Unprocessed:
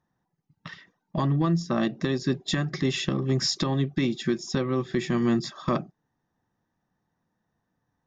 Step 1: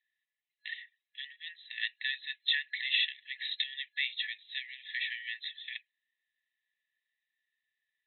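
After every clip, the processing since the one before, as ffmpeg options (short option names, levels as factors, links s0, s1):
-af "afftfilt=real='re*between(b*sr/4096,1700,4100)':imag='im*between(b*sr/4096,1700,4100)':win_size=4096:overlap=0.75,volume=1.58"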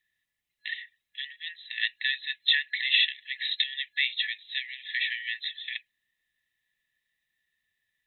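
-af "bass=f=250:g=12,treble=f=4000:g=1,volume=2"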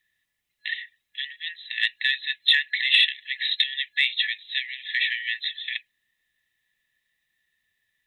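-af "acontrast=48,volume=0.891"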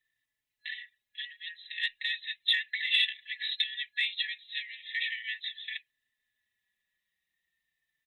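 -filter_complex "[0:a]asplit=2[s0][s1];[s1]adelay=4,afreqshift=-0.37[s2];[s0][s2]amix=inputs=2:normalize=1,volume=0.562"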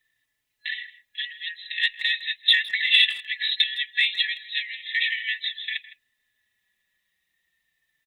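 -filter_complex "[0:a]asplit=2[s0][s1];[s1]adelay=160,highpass=300,lowpass=3400,asoftclip=type=hard:threshold=0.0708,volume=0.158[s2];[s0][s2]amix=inputs=2:normalize=0,volume=2.66"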